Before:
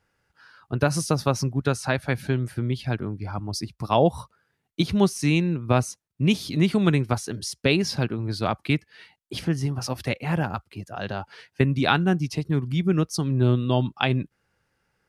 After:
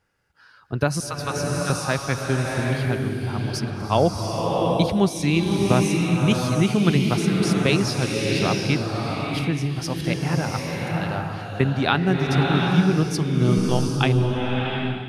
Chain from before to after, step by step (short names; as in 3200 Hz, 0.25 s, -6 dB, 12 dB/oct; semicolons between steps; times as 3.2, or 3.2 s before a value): 1–1.7 Chebyshev high-pass 1200 Hz, order 2; 13.57–13.97 LPC vocoder at 8 kHz pitch kept; bloom reverb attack 0.74 s, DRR -0.5 dB